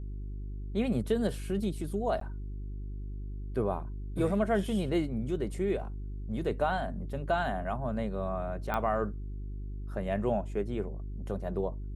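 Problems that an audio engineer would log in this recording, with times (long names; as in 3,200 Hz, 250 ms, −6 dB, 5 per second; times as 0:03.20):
mains hum 50 Hz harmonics 8 −38 dBFS
0:02.20–0:02.21: drop-out 13 ms
0:08.74: click −19 dBFS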